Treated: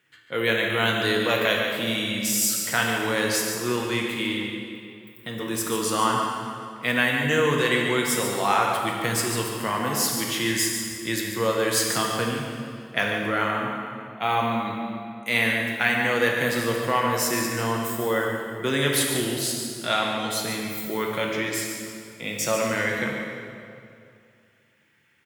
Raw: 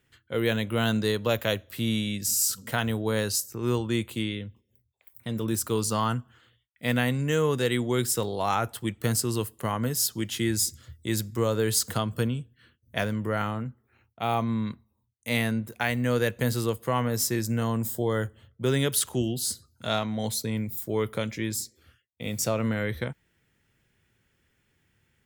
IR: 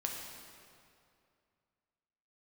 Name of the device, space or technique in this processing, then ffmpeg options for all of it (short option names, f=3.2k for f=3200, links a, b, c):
PA in a hall: -filter_complex "[0:a]highpass=160,equalizer=f=2k:t=o:w=1.9:g=8,aecho=1:1:144:0.355[a];[1:a]atrim=start_sample=2205[b];[a][b]afir=irnorm=-1:irlink=0"